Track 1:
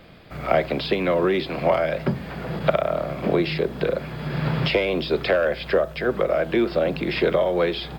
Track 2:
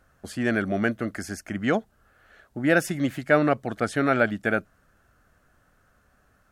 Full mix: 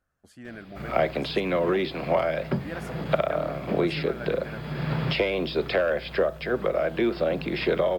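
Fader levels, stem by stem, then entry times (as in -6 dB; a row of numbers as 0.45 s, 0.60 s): -3.5 dB, -17.0 dB; 0.45 s, 0.00 s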